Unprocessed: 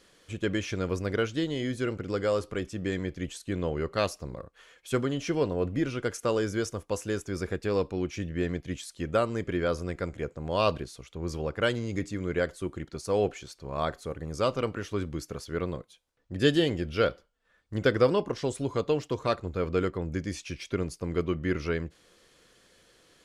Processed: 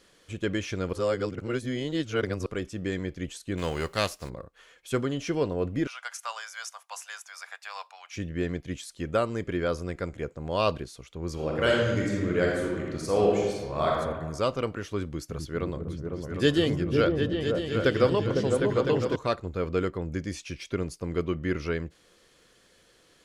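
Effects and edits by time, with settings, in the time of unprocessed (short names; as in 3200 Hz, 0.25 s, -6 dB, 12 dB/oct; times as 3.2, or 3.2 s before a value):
0.93–2.46 reverse
3.57–4.28 spectral whitening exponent 0.6
5.87–8.16 steep high-pass 730 Hz 48 dB/oct
11.33–13.9 reverb throw, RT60 1.3 s, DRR -3 dB
15.04–19.16 repeats that get brighter 0.252 s, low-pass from 200 Hz, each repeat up 2 oct, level 0 dB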